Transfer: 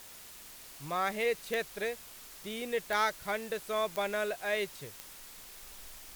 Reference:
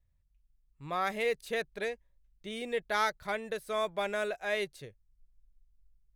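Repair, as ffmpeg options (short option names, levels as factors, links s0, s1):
-af "adeclick=t=4,afwtdn=0.0032,asetnsamples=n=441:p=0,asendcmd='5.63 volume volume -9dB',volume=1"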